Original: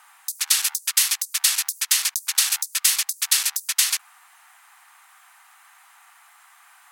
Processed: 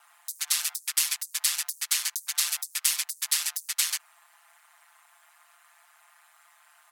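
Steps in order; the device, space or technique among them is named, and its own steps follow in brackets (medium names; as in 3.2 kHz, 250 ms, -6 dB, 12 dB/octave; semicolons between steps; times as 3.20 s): ring-modulated robot voice (ring modulator 80 Hz; comb 5.8 ms, depth 99%); trim -6.5 dB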